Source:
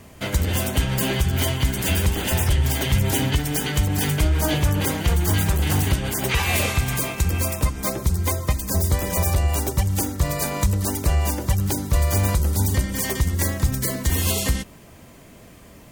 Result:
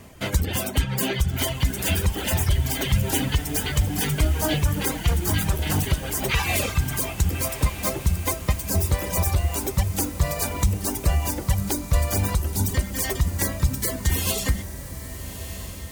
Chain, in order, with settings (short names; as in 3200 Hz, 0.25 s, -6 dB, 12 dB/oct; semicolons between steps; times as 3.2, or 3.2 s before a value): reverb removal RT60 1.7 s; diffused feedback echo 1.264 s, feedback 48%, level -11.5 dB